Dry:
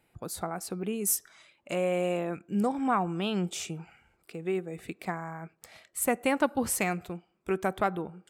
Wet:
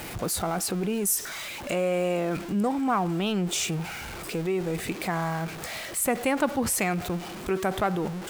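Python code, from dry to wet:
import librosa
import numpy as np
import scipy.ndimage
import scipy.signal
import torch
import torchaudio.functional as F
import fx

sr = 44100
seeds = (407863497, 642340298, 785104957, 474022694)

p1 = x + 0.5 * 10.0 ** (-39.5 / 20.0) * np.sign(x)
p2 = fx.over_compress(p1, sr, threshold_db=-35.0, ratio=-1.0)
y = p1 + F.gain(torch.from_numpy(p2), -2.0).numpy()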